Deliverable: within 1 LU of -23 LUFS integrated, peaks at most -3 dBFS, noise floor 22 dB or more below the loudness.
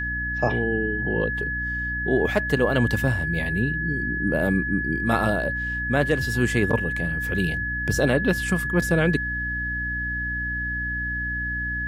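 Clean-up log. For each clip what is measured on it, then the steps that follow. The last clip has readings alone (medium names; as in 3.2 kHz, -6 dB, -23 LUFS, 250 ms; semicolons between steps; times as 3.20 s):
hum 60 Hz; highest harmonic 300 Hz; hum level -30 dBFS; steady tone 1.7 kHz; tone level -26 dBFS; loudness -23.5 LUFS; peak level -7.5 dBFS; loudness target -23.0 LUFS
-> hum notches 60/120/180/240/300 Hz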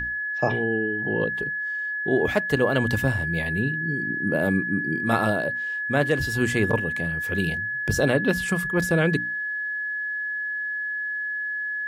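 hum not found; steady tone 1.7 kHz; tone level -26 dBFS
-> band-stop 1.7 kHz, Q 30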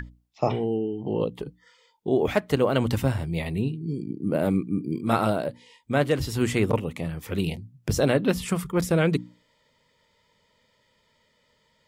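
steady tone not found; loudness -26.0 LUFS; peak level -8.0 dBFS; loudness target -23.0 LUFS
-> trim +3 dB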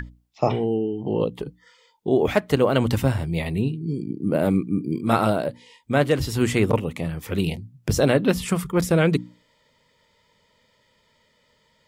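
loudness -23.0 LUFS; peak level -5.0 dBFS; noise floor -64 dBFS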